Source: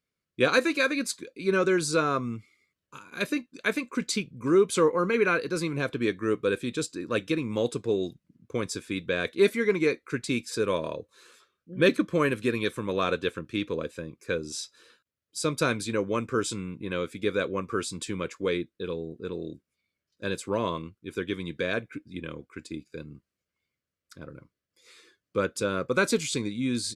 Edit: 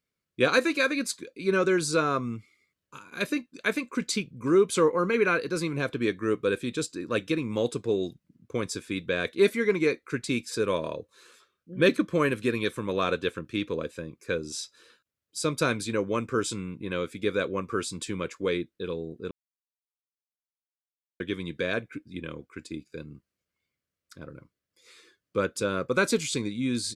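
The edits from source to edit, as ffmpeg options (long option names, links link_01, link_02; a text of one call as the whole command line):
ffmpeg -i in.wav -filter_complex "[0:a]asplit=3[link_01][link_02][link_03];[link_01]atrim=end=19.31,asetpts=PTS-STARTPTS,afade=type=out:start_time=19.306:duration=0.004:curve=hsin[link_04];[link_02]atrim=start=19.31:end=21.2,asetpts=PTS-STARTPTS,volume=0[link_05];[link_03]atrim=start=21.2,asetpts=PTS-STARTPTS,afade=type=in:duration=0.004:curve=hsin[link_06];[link_04][link_05][link_06]concat=n=3:v=0:a=1" out.wav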